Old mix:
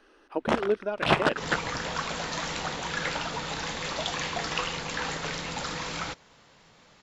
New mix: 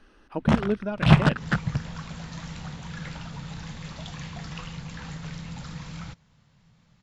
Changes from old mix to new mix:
second sound -11.0 dB; master: add resonant low shelf 240 Hz +14 dB, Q 1.5

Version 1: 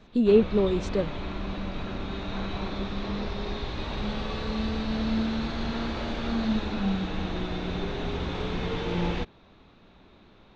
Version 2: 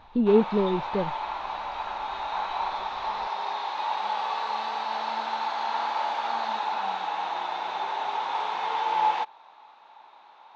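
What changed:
speech: add distance through air 350 m; background: add resonant high-pass 870 Hz, resonance Q 8.1

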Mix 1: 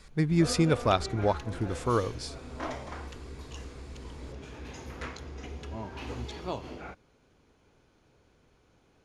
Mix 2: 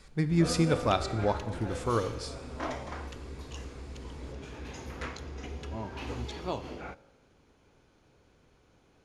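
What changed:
speech -4.5 dB; reverb: on, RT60 1.3 s

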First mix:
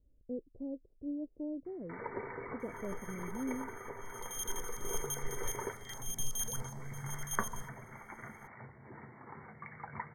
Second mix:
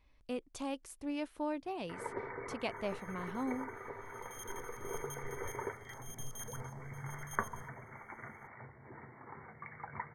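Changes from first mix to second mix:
speech: remove steep low-pass 530 Hz 36 dB/octave; first sound: add peaking EQ 190 Hz -5.5 dB 0.61 oct; second sound -10.0 dB

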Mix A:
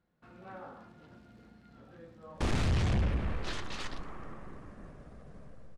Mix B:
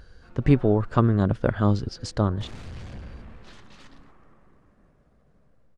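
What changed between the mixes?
speech: unmuted; second sound -11.0 dB

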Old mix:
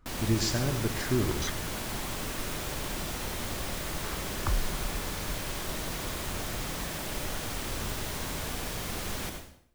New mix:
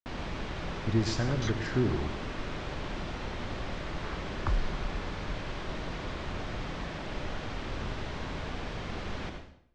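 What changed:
speech: entry +0.65 s; first sound: add distance through air 100 m; master: add distance through air 120 m

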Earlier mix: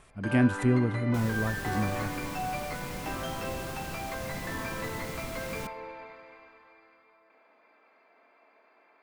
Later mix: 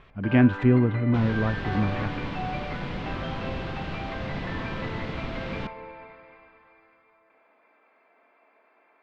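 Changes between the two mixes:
speech +5.0 dB; second sound +6.5 dB; master: add low-pass 3.6 kHz 24 dB/octave

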